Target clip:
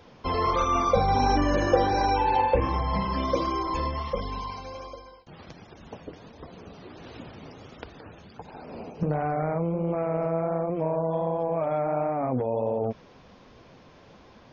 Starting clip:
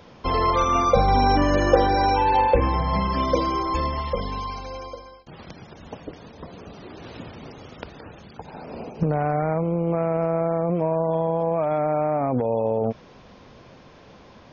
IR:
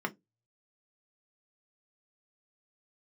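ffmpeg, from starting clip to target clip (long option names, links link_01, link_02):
-af "flanger=delay=2.5:depth=9.4:regen=-49:speed=1.4:shape=sinusoidal"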